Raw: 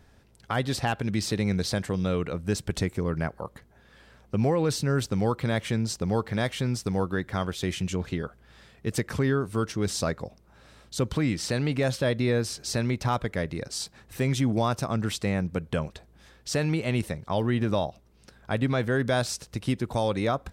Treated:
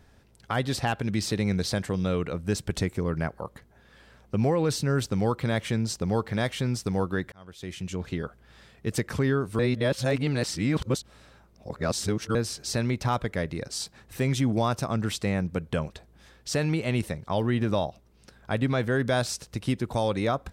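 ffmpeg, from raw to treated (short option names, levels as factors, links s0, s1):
-filter_complex "[0:a]asplit=4[s0][s1][s2][s3];[s0]atrim=end=7.32,asetpts=PTS-STARTPTS,afade=t=out:st=7.316:d=0.004:c=hsin[s4];[s1]atrim=start=7.32:end=9.592,asetpts=PTS-STARTPTS,afade=t=in:d=0.93[s5];[s2]atrim=start=9.588:end=12.352,asetpts=PTS-STARTPTS,areverse[s6];[s3]atrim=start=12.348[s7];[s4][s5]concat=n=2:v=0:a=1[s8];[s8][s6]acrossfade=d=0.004:c1=hsin:c2=hsin[s9];[s9][s7]acrossfade=d=0.004:c1=hsin:c2=hsin"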